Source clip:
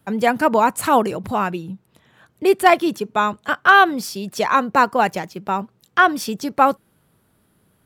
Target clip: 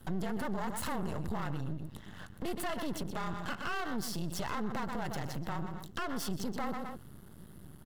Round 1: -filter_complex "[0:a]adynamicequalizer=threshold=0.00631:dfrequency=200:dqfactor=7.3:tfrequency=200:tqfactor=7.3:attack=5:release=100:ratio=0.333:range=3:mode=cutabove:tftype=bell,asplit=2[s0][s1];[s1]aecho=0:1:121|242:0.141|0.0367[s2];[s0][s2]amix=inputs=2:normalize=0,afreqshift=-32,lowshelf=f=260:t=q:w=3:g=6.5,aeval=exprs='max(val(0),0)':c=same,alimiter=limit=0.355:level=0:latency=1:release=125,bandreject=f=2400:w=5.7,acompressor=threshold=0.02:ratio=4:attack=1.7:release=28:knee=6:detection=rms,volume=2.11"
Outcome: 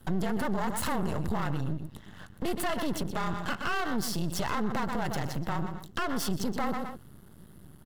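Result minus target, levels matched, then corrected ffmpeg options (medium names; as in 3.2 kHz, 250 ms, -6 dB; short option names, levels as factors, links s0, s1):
compression: peak gain reduction -5.5 dB
-filter_complex "[0:a]adynamicequalizer=threshold=0.00631:dfrequency=200:dqfactor=7.3:tfrequency=200:tqfactor=7.3:attack=5:release=100:ratio=0.333:range=3:mode=cutabove:tftype=bell,asplit=2[s0][s1];[s1]aecho=0:1:121|242:0.141|0.0367[s2];[s0][s2]amix=inputs=2:normalize=0,afreqshift=-32,lowshelf=f=260:t=q:w=3:g=6.5,aeval=exprs='max(val(0),0)':c=same,alimiter=limit=0.355:level=0:latency=1:release=125,bandreject=f=2400:w=5.7,acompressor=threshold=0.00841:ratio=4:attack=1.7:release=28:knee=6:detection=rms,volume=2.11"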